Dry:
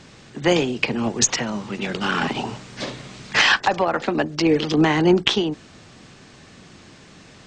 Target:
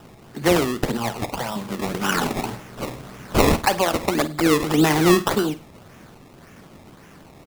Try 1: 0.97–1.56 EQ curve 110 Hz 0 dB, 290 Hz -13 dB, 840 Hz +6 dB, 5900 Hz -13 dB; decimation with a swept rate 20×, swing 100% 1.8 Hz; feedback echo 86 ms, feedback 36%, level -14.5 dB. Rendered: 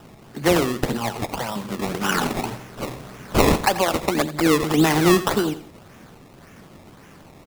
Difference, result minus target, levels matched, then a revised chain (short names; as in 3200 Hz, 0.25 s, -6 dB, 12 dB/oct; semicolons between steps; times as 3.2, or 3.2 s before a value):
echo 35 ms late
0.97–1.56 EQ curve 110 Hz 0 dB, 290 Hz -13 dB, 840 Hz +6 dB, 5900 Hz -13 dB; decimation with a swept rate 20×, swing 100% 1.8 Hz; feedback echo 51 ms, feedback 36%, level -14.5 dB